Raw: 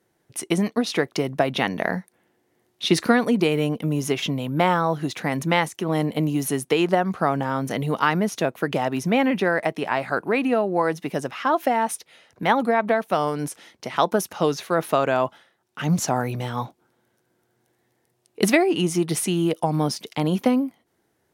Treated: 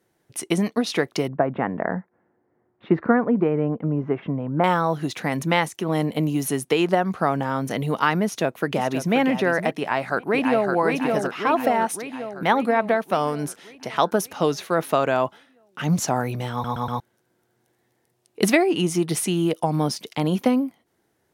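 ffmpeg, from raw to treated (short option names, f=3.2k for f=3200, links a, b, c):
-filter_complex "[0:a]asettb=1/sr,asplit=3[a][b][c];[a]atrim=end=1.284[d];[b]atrim=start=1.28:end=4.64,asetpts=PTS-STARTPTS,afade=t=in:d=0.004:c=qsin,afade=t=out:st=3.356:d=0.004:c=qsin,lowpass=f=1.6k:w=0.5412,lowpass=f=1.6k:w=1.3066[e];[c]atrim=start=4.636[f];[d][e]acrossfade=d=0.004:c1=hsin:c2=qsin[g];[g][f]acrossfade=d=0.004:c1=qsin:c2=hsin,asplit=2[h][i];[i]afade=t=in:st=8.24:d=0.01,afade=t=out:st=9.17:d=0.01,aecho=0:1:530|1060:0.334965|0.0502448[j];[h][j]amix=inputs=2:normalize=0,asplit=2[k][l];[l]afade=t=in:st=9.77:d=0.01,afade=t=out:st=10.72:d=0.01,aecho=0:1:560|1120|1680|2240|2800|3360|3920|4480|5040:0.707946|0.424767|0.25486|0.152916|0.0917498|0.0550499|0.0330299|0.019818|0.0118908[m];[k][m]amix=inputs=2:normalize=0,asplit=5[n][o][p][q][r];[n]atrim=end=16.642[s];[o]atrim=start=16.518:end=16.642[t];[p]atrim=start=16.518:end=16.642[u];[q]atrim=start=16.518:end=16.642[v];[r]atrim=start=16.998[w];[s][t]acrossfade=d=0.004:c1=hsin:c2=hsin[x];[x][u]acrossfade=d=0.004:c1=hsin:c2=hsin[y];[y][v]acrossfade=d=0.004:c1=hsin:c2=hsin[z];[z][w]acrossfade=d=0.004:c1=hsin:c2=hsin"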